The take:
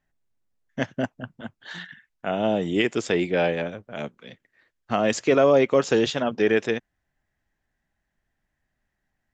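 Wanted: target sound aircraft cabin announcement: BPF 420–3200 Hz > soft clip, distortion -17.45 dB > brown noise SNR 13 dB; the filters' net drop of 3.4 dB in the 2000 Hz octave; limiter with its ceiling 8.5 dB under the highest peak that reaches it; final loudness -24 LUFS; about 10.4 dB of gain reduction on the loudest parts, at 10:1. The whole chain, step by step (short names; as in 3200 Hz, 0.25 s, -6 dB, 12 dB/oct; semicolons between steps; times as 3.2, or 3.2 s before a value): bell 2000 Hz -3.5 dB; compressor 10:1, threshold -24 dBFS; limiter -21 dBFS; BPF 420–3200 Hz; soft clip -28 dBFS; brown noise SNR 13 dB; gain +14.5 dB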